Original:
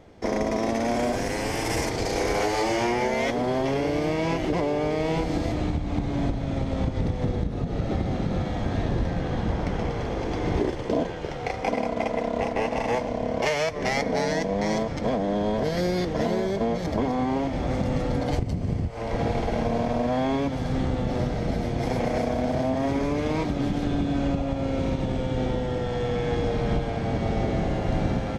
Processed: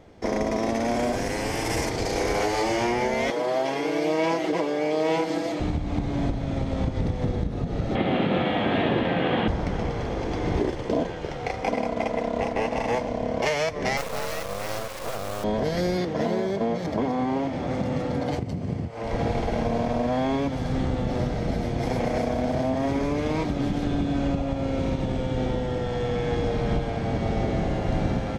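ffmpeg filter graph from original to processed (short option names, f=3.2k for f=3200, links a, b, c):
-filter_complex "[0:a]asettb=1/sr,asplit=3[a][b][c];[a]atrim=end=3.304[d];[b]atrim=start=3.3:end=5.6,asetpts=PTS-STARTPTS,afade=t=in:d=0.004:c=qsin,afade=t=out:st=2.296:d=0.004:c=qsin,highpass=320,aecho=1:1:6.2:0.73,atrim=end_sample=101430[e];[c]atrim=start=5.596[f];[d][e]acrossfade=d=0.004:c1=hsin:c2=qsin[g];[g][f]acrossfade=d=0.004:c1=qsin:c2=hsin,asettb=1/sr,asplit=3[h][i][j];[h]atrim=end=7.954[k];[i]atrim=start=7.95:end=9.48,asetpts=PTS-STARTPTS,afade=t=in:d=0.004:c=qsin,afade=t=out:st=1.526:d=0.004:c=qsin,highpass=220,highshelf=f=4.2k:t=q:w=3:g=-12,acontrast=87[l];[j]atrim=start=9.476[m];[k][l]acrossfade=d=0.004:c1=hsin:c2=qsin[n];[n][m]acrossfade=d=0.004:c1=qsin:c2=hsin,asettb=1/sr,asplit=3[o][p][q];[o]atrim=end=13.974[r];[p]atrim=start=13.97:end=15.44,asetpts=PTS-STARTPTS,afade=t=in:d=0.004:c=qsin,afade=t=out:st=1.466:d=0.004:c=qsin,highpass=f=400:w=0.5412,highpass=f=400:w=1.3066,aeval=exprs='val(0)+0.02*sin(2*PI*540*n/s)':c=same,acrusher=bits=3:dc=4:mix=0:aa=0.000001[s];[q]atrim=start=15.436[t];[r][s]acrossfade=d=0.004:c1=hsin:c2=qsin[u];[u][t]acrossfade=d=0.004:c1=qsin:c2=hsin,asettb=1/sr,asplit=3[v][w][x];[v]atrim=end=15.974[y];[w]atrim=start=15.97:end=19.04,asetpts=PTS-STARTPTS,afade=t=in:d=0.004:c=qsin,afade=t=out:st=3.066:d=0.004:c=qsin,highpass=110,highshelf=f=4.8k:g=-4.5[z];[x]atrim=start=19.036[aa];[y][z]acrossfade=d=0.004:c1=hsin:c2=qsin[ab];[ab][aa]acrossfade=d=0.004:c1=qsin:c2=hsin"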